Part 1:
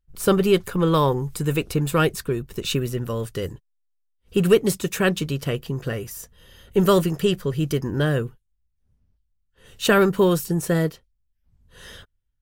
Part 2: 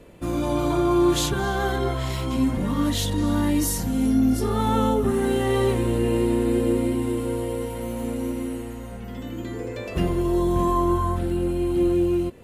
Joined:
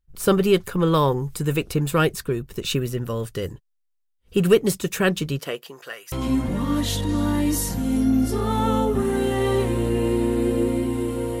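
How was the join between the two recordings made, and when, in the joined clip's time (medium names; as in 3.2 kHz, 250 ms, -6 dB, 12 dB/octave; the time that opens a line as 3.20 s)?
part 1
5.38–6.12 s: high-pass 290 Hz -> 1.4 kHz
6.12 s: go over to part 2 from 2.21 s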